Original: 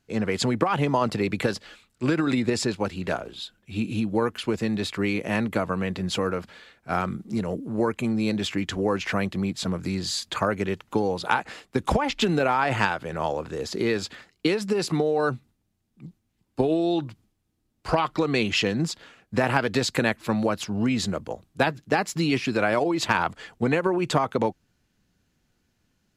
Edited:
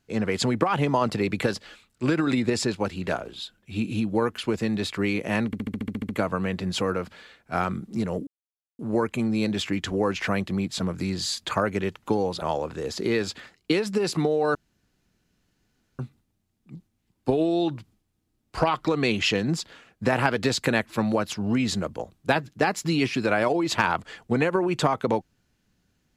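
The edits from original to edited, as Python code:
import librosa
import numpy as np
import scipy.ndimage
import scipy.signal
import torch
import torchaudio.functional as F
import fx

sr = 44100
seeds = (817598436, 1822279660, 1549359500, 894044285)

y = fx.edit(x, sr, fx.stutter(start_s=5.46, slice_s=0.07, count=10),
    fx.insert_silence(at_s=7.64, length_s=0.52),
    fx.cut(start_s=11.27, length_s=1.9),
    fx.insert_room_tone(at_s=15.3, length_s=1.44), tone=tone)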